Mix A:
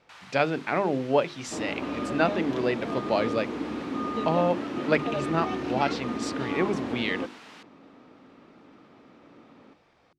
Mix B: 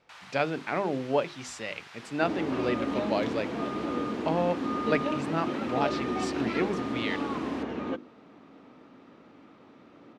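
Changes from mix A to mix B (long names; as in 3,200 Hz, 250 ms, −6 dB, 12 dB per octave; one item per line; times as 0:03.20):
speech −3.5 dB
second sound: entry +0.70 s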